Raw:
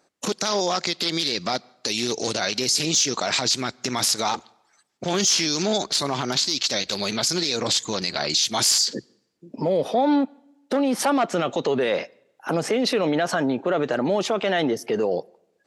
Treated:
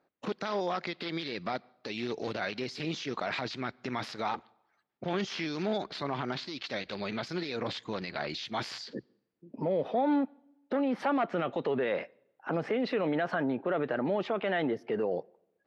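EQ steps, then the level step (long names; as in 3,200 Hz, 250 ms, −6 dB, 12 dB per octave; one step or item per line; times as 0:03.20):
high-frequency loss of the air 360 metres
dynamic equaliser 1,900 Hz, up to +4 dB, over −42 dBFS, Q 1.3
−7.0 dB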